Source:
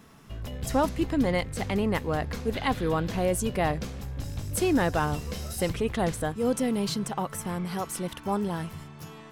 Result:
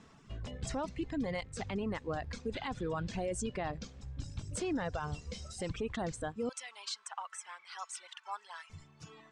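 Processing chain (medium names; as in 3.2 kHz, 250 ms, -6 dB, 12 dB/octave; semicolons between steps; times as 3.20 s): steep low-pass 8.5 kHz 48 dB/octave; reverb removal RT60 1.8 s; 6.49–8.70 s: high-pass 960 Hz 24 dB/octave; peak limiter -23.5 dBFS, peak gain reduction 9 dB; trim -4.5 dB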